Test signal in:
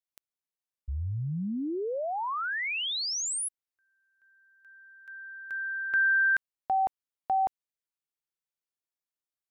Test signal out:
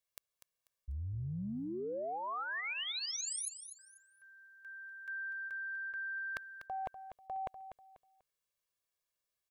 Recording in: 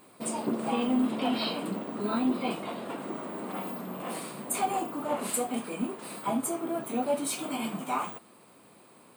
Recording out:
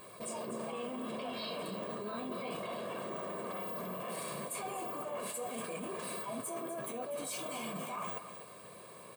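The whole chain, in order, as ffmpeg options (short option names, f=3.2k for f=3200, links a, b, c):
-af "aecho=1:1:1.8:0.68,areverse,acompressor=threshold=-41dB:ratio=12:attack=8.3:release=42:knee=1:detection=rms,areverse,aecho=1:1:245|490|735:0.299|0.0836|0.0234,volume=2.5dB"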